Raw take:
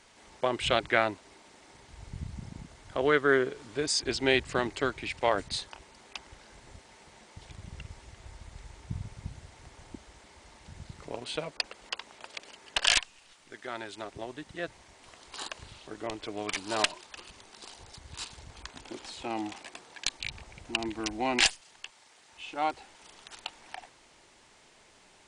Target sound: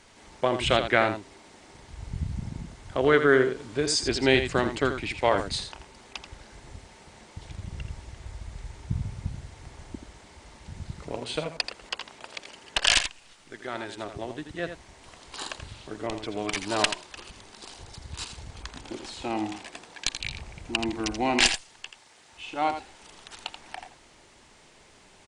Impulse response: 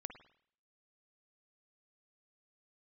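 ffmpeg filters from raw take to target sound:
-filter_complex "[0:a]lowshelf=frequency=280:gain=5.5,asplit=2[link_01][link_02];[link_02]aecho=0:1:83:0.355[link_03];[link_01][link_03]amix=inputs=2:normalize=0,volume=2.5dB"

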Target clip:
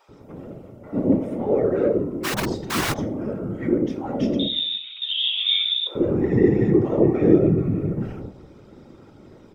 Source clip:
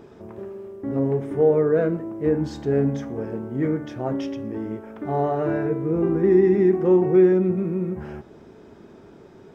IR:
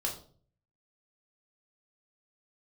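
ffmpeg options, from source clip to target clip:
-filter_complex "[0:a]aecho=1:1:3.7:0.99,asettb=1/sr,asplit=3[link_01][link_02][link_03];[link_01]atrim=end=4.394[link_04];[link_02]atrim=start=4.39:end=5.87,asetpts=PTS-STARTPTS,afade=type=in:duration=0.004:curve=qsin,afade=type=out:start_time=1.476:duration=0.004:curve=qsin,lowpass=frequency=3300:width_type=q:width=0.5098,lowpass=frequency=3300:width_type=q:width=0.6013,lowpass=frequency=3300:width_type=q:width=0.9,lowpass=frequency=3300:width_type=q:width=2.563,afreqshift=-3900[link_05];[link_03]atrim=start=5.866[link_06];[link_04][link_05]acrossfade=duration=0.004:curve1=hsin:curve2=qsin[link_07];[link_07][link_06]acrossfade=duration=0.004:curve1=qsin:curve2=hsin,asuperstop=centerf=1700:order=4:qfactor=6.8,asplit=2[link_08][link_09];[1:a]atrim=start_sample=2205,lowshelf=frequency=78:gain=9.5[link_10];[link_09][link_10]afir=irnorm=-1:irlink=0,volume=-6dB[link_11];[link_08][link_11]amix=inputs=2:normalize=0,asplit=3[link_12][link_13][link_14];[link_12]afade=type=out:start_time=2.23:duration=0.02[link_15];[link_13]aeval=exprs='(mod(4.22*val(0)+1,2)-1)/4.22':channel_layout=same,afade=type=in:start_time=2.23:duration=0.02,afade=type=out:start_time=2.92:duration=0.02[link_16];[link_14]afade=type=in:start_time=2.92:duration=0.02[link_17];[link_15][link_16][link_17]amix=inputs=3:normalize=0,afftfilt=real='hypot(re,im)*cos(2*PI*random(0))':imag='hypot(re,im)*sin(2*PI*random(1))':win_size=512:overlap=0.75,equalizer=frequency=110:width=1.4:gain=6,acrossover=split=750[link_18][link_19];[link_18]adelay=90[link_20];[link_20][link_19]amix=inputs=2:normalize=0"

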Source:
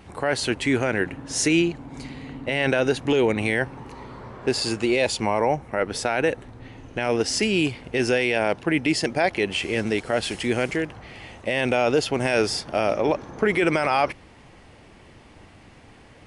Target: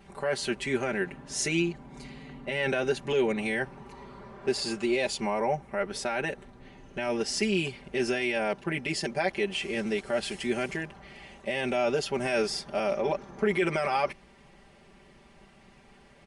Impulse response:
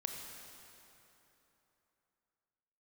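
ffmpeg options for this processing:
-af "aecho=1:1:5.1:0.95,volume=-9dB"

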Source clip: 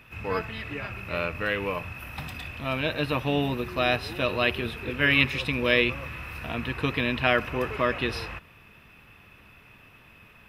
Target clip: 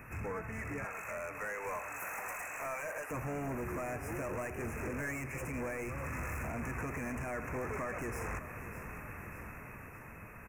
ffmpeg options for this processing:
ffmpeg -i in.wav -filter_complex "[0:a]asettb=1/sr,asplit=3[link_01][link_02][link_03];[link_01]atrim=end=0.844[link_04];[link_02]atrim=start=0.84:end=3.11,asetpts=PTS-STARTPTS,afade=type=in:duration=0.004:curve=qsin,afade=type=out:start_time=2.266:duration=0.004:curve=qsin,highpass=frequency=540:width=0.5412,highpass=frequency=540:width=1.3066[link_05];[link_03]atrim=start=3.106[link_06];[link_04][link_05]acrossfade=duration=0.004:curve1=hsin:curve2=qsin[link_07];[link_07][link_06]acrossfade=duration=0.004:curve1=qsin:curve2=hsin,acompressor=threshold=-40dB:ratio=3,alimiter=level_in=5dB:limit=-24dB:level=0:latency=1:release=117,volume=-5dB,dynaudnorm=framelen=270:gausssize=9:maxgain=4.5dB,asoftclip=type=hard:threshold=-40dB,asuperstop=centerf=3800:order=8:qfactor=0.98,aecho=1:1:600|1200|1800|2400|3000|3600:0.224|0.125|0.0702|0.0393|0.022|0.0123,volume=4.5dB" out.wav

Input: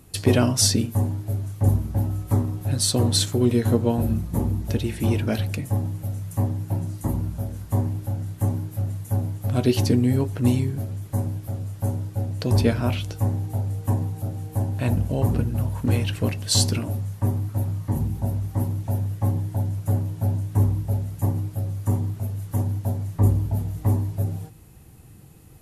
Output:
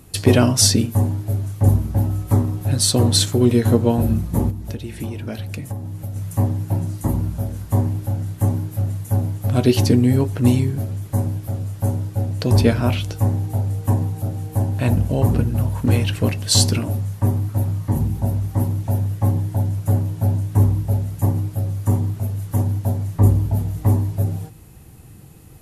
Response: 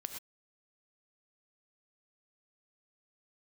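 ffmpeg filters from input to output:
-filter_complex "[0:a]asettb=1/sr,asplit=3[link_01][link_02][link_03];[link_01]atrim=end=4.504[link_04];[link_02]atrim=start=4.5:end=6.16,asetpts=PTS-STARTPTS,afade=type=in:duration=0.004:curve=qsin,afade=type=out:start_time=1.656:duration=0.004:curve=qsin,acompressor=threshold=-30dB:ratio=6[link_05];[link_03]atrim=start=6.156[link_06];[link_04][link_05]acrossfade=duration=0.004:curve1=hsin:curve2=qsin[link_07];[link_07][link_06]acrossfade=duration=0.004:curve1=qsin:curve2=hsin,volume=4.5dB"

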